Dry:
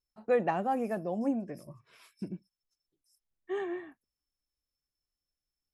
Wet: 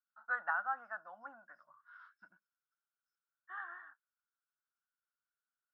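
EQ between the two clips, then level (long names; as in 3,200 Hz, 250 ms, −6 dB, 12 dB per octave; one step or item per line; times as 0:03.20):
four-pole ladder band-pass 1,500 Hz, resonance 85%
high-frequency loss of the air 250 metres
phaser with its sweep stopped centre 1,000 Hz, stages 4
+13.0 dB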